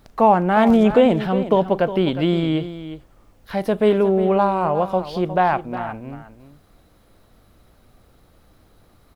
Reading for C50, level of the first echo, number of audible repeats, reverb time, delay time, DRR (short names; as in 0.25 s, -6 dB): none, -12.5 dB, 1, none, 0.359 s, none